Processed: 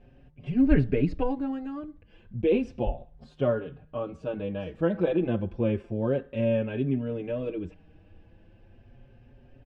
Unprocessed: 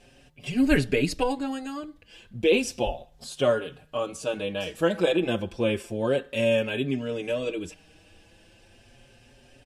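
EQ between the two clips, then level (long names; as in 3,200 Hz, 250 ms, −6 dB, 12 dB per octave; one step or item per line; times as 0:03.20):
low-pass filter 1,900 Hz 12 dB per octave
low-shelf EQ 320 Hz +12 dB
−6.5 dB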